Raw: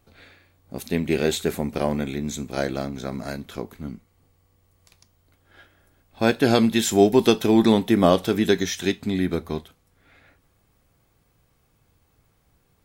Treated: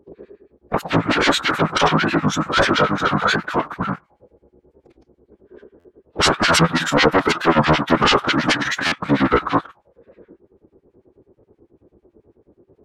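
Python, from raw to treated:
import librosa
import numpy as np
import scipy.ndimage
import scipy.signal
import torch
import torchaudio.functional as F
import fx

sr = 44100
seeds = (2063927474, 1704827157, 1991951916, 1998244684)

y = fx.low_shelf(x, sr, hz=500.0, db=10.0)
y = fx.rider(y, sr, range_db=4, speed_s=2.0)
y = fx.leveller(y, sr, passes=2)
y = fx.auto_wah(y, sr, base_hz=390.0, top_hz=1300.0, q=5.2, full_db=-14.0, direction='up')
y = fx.fold_sine(y, sr, drive_db=15, ceiling_db=-11.0)
y = fx.harmonic_tremolo(y, sr, hz=9.2, depth_pct=100, crossover_hz=1600.0)
y = fx.pitch_keep_formants(y, sr, semitones=-5.5)
y = fx.buffer_glitch(y, sr, at_s=(5.79, 8.87), block=512, repeats=4)
y = fx.record_warp(y, sr, rpm=45.0, depth_cents=160.0)
y = y * librosa.db_to_amplitude(6.0)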